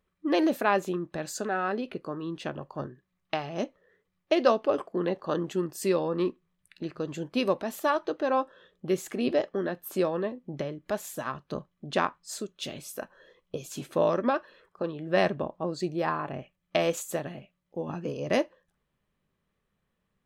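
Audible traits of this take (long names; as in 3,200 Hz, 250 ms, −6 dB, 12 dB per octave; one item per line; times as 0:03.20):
background noise floor −79 dBFS
spectral slope −4.5 dB per octave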